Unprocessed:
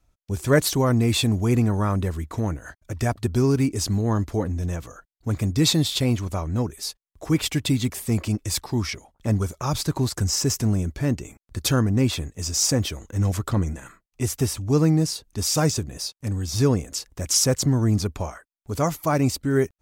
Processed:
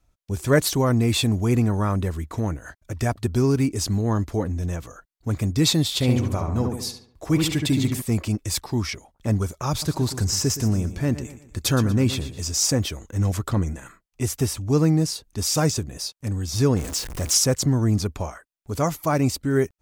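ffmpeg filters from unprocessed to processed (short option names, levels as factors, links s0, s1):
-filter_complex "[0:a]asettb=1/sr,asplit=3[s0][s1][s2];[s0]atrim=end=5.874[s3];[s1]atrim=start=5.87:end=8.02,asetpts=PTS-STARTPTS,afade=t=in:d=0.004:c=qsin,afade=t=out:st=2.146:d=0.004:c=qsin,asplit=2[s4][s5];[s5]adelay=71,lowpass=f=2100:p=1,volume=0.668,asplit=2[s6][s7];[s7]adelay=71,lowpass=f=2100:p=1,volume=0.5,asplit=2[s8][s9];[s9]adelay=71,lowpass=f=2100:p=1,volume=0.5,asplit=2[s10][s11];[s11]adelay=71,lowpass=f=2100:p=1,volume=0.5,asplit=2[s12][s13];[s13]adelay=71,lowpass=f=2100:p=1,volume=0.5,asplit=2[s14][s15];[s15]adelay=71,lowpass=f=2100:p=1,volume=0.5,asplit=2[s16][s17];[s17]adelay=71,lowpass=f=2100:p=1,volume=0.5[s18];[s4][s6][s8][s10][s12][s14][s16][s18]amix=inputs=8:normalize=0,atrim=end_sample=94815[s19];[s2]atrim=start=8.016[s20];[s3][s19]acrossfade=d=0.004:c1=hsin:c2=qsin[s21];[s21][s20]acrossfade=d=0.004:c1=qsin:c2=hsin,asettb=1/sr,asplit=3[s22][s23][s24];[s22]atrim=end=9.704[s25];[s23]atrim=start=9.7:end=12.52,asetpts=PTS-STARTPTS,afade=t=in:d=0.004:c=qsin,afade=t=out:st=2.816:d=0.004:c=qsin,aecho=1:1:119|238|357|476:0.224|0.0851|0.0323|0.0123,atrim=end_sample=124362[s26];[s24]atrim=start=12.516[s27];[s25][s26]acrossfade=d=0.004:c1=hsin:c2=qsin[s28];[s28][s27]acrossfade=d=0.004:c1=qsin:c2=hsin,asettb=1/sr,asplit=3[s29][s30][s31];[s29]atrim=end=16.764[s32];[s30]atrim=start=16.76:end=17.38,asetpts=PTS-STARTPTS,afade=t=in:d=0.004:c=qsin,afade=t=out:st=0.616:d=0.004:c=qsin,aeval=exprs='val(0)+0.5*0.0376*sgn(val(0))':c=same[s33];[s31]atrim=start=17.376[s34];[s32][s33]acrossfade=d=0.004:c1=hsin:c2=qsin[s35];[s35][s34]acrossfade=d=0.004:c1=qsin:c2=hsin"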